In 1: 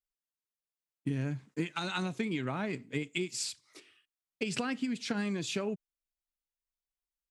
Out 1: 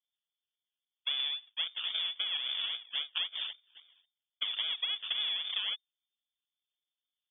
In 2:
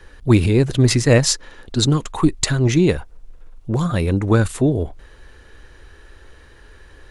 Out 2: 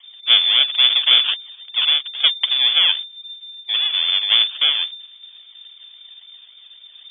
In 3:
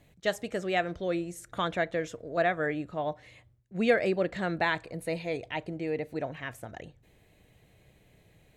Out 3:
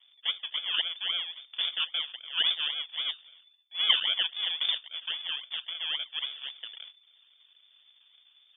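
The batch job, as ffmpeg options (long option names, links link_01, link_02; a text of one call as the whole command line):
ffmpeg -i in.wav -af "acrusher=samples=40:mix=1:aa=0.000001:lfo=1:lforange=24:lforate=3.7,lowpass=frequency=3100:width_type=q:width=0.5098,lowpass=frequency=3100:width_type=q:width=0.6013,lowpass=frequency=3100:width_type=q:width=0.9,lowpass=frequency=3100:width_type=q:width=2.563,afreqshift=-3600,aemphasis=mode=production:type=bsi,volume=-4dB" out.wav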